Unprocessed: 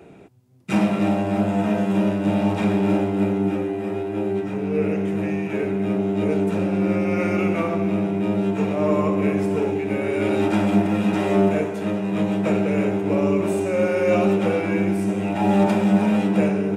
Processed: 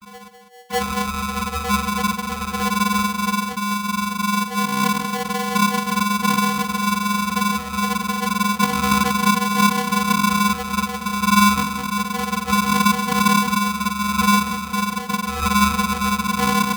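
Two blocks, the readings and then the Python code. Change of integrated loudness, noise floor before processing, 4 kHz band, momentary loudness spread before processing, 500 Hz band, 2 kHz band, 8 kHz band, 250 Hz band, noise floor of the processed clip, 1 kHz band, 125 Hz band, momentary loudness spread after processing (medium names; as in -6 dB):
+1.5 dB, -28 dBFS, +15.0 dB, 6 LU, -11.5 dB, +8.5 dB, no reading, -2.0 dB, -33 dBFS, +11.0 dB, -2.5 dB, 7 LU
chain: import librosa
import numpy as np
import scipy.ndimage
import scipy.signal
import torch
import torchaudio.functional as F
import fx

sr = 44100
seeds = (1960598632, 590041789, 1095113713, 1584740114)

p1 = fx.envelope_sharpen(x, sr, power=3.0)
p2 = 10.0 ** (-10.5 / 20.0) * np.tanh(p1 / 10.0 ** (-10.5 / 20.0))
p3 = fx.vocoder(p2, sr, bands=32, carrier='square', carrier_hz=139.0)
p4 = p3 + fx.echo_single(p3, sr, ms=200, db=-10.5, dry=0)
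p5 = p4 * np.sign(np.sin(2.0 * np.pi * 620.0 * np.arange(len(p4)) / sr))
y = F.gain(torch.from_numpy(p5), 3.0).numpy()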